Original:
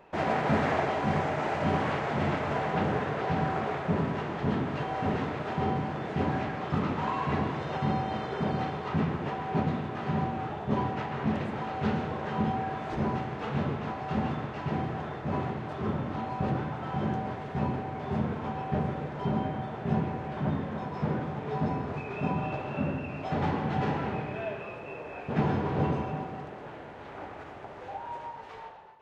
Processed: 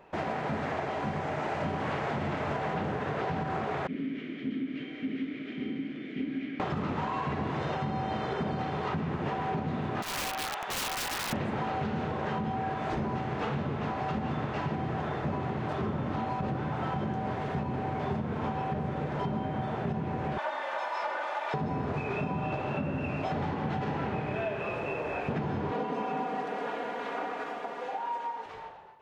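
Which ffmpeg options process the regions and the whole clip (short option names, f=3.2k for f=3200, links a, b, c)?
-filter_complex "[0:a]asettb=1/sr,asplit=3[a][b][c];[a]atrim=end=3.874[d];[b]atrim=start=3.87:end=6.6,asetpts=PTS-STARTPTS,afade=t=in:d=0.004:c=qsin,afade=t=out:st=2.726:d=0.004:c=qsin,asplit=3[e][f][g];[e]bandpass=f=270:t=q:w=8,volume=0dB[h];[f]bandpass=f=2.29k:t=q:w=8,volume=-6dB[i];[g]bandpass=f=3.01k:t=q:w=8,volume=-9dB[j];[h][i][j]amix=inputs=3:normalize=0,lowshelf=f=98:g=-11.5[k];[c]atrim=start=6.596[l];[d][k]acrossfade=d=0.004:c1=hsin:c2=qsin[m];[m][l]acrossfade=d=0.004:c1=qsin:c2=hsin,asettb=1/sr,asplit=3[n][o][p];[n]atrim=end=10.024[q];[o]atrim=start=10.02:end=11.33,asetpts=PTS-STARTPTS,afade=t=in:d=0.004:c=qsin,afade=t=out:st=1.306:d=0.004:c=qsin,highpass=1.1k,aeval=exprs='(mod(63.1*val(0)+1,2)-1)/63.1':c=same[r];[p]atrim=start=11.326[s];[q][r]acrossfade=d=0.004:c1=hsin:c2=qsin[t];[t][s]acrossfade=d=0.004:c1=qsin:c2=hsin,asettb=1/sr,asplit=3[u][v][w];[u]atrim=end=20.384[x];[v]atrim=start=20.38:end=21.54,asetpts=PTS-STARTPTS,afade=t=in:d=0.004:c=qsin,afade=t=out:st=1.156:d=0.004:c=qsin,highpass=f=660:w=0.5412,highpass=f=660:w=1.3066,aecho=1:1:3.4:0.94,atrim=end_sample=51156[y];[w]atrim=start=21.536[z];[x][y]acrossfade=d=0.004:c1=hsin:c2=qsin[aa];[aa][z]acrossfade=d=0.004:c1=qsin:c2=hsin,asettb=1/sr,asplit=3[ab][ac][ad];[ab]atrim=end=25.714[ae];[ac]atrim=start=25.71:end=28.46,asetpts=PTS-STARTPTS,afade=t=in:d=0.004:c=qsin,afade=t=out:st=2.746:d=0.004:c=qsin,highpass=280,aecho=1:1:4.2:0.91,atrim=end_sample=121275[af];[ad]atrim=start=28.456[ag];[ae][af]acrossfade=d=0.004:c1=hsin:c2=qsin[ah];[ah][ag]acrossfade=d=0.004:c1=qsin:c2=hsin,dynaudnorm=f=180:g=21:m=10dB,alimiter=limit=-14.5dB:level=0:latency=1:release=240,acompressor=threshold=-30dB:ratio=4"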